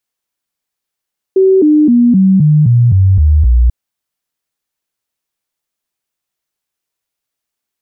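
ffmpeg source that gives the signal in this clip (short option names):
-f lavfi -i "aevalsrc='0.596*clip(min(mod(t,0.26),0.26-mod(t,0.26))/0.005,0,1)*sin(2*PI*381*pow(2,-floor(t/0.26)/3)*mod(t,0.26))':d=2.34:s=44100"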